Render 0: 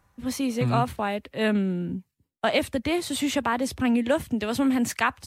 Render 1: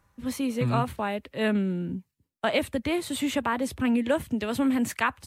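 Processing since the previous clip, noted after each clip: band-stop 740 Hz, Q 12; dynamic bell 5.4 kHz, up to -6 dB, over -48 dBFS, Q 1.7; trim -1.5 dB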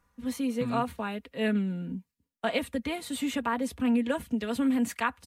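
comb 4.2 ms, depth 61%; trim -5 dB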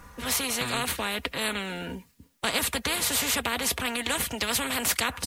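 spectrum-flattening compressor 4:1; trim +5.5 dB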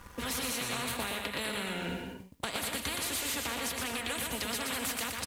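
waveshaping leveller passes 2; compression 10:1, threshold -29 dBFS, peak gain reduction 14 dB; on a send: bouncing-ball echo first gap 120 ms, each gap 0.65×, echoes 5; on the sum: trim -4.5 dB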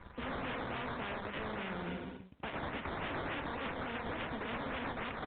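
decimation with a swept rate 13×, swing 60% 3.5 Hz; hard clipper -31.5 dBFS, distortion -13 dB; trim -3 dB; µ-law 64 kbps 8 kHz

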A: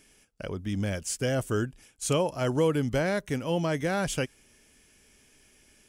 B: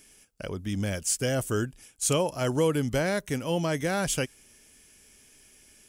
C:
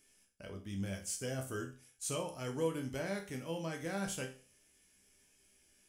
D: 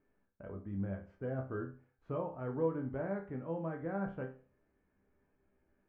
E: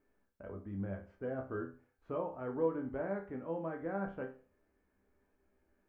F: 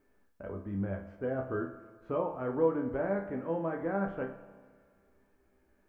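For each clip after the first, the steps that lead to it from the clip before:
treble shelf 5.5 kHz +8.5 dB
chord resonator C2 major, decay 0.39 s
low-pass 1.4 kHz 24 dB/octave; trim +1.5 dB
peaking EQ 140 Hz -10.5 dB 0.6 oct; trim +1 dB
spring tank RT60 1.8 s, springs 35/54 ms, chirp 30 ms, DRR 11.5 dB; trim +5.5 dB

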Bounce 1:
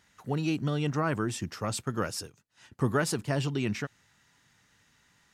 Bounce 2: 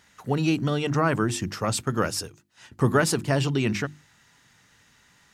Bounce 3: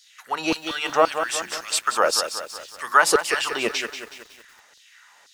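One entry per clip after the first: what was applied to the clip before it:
hum notches 50/100/150/200/250/300/350 Hz; trim +6.5 dB
LFO high-pass saw down 1.9 Hz 470–4700 Hz; bit-crushed delay 185 ms, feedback 55%, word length 8-bit, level -9 dB; trim +4.5 dB

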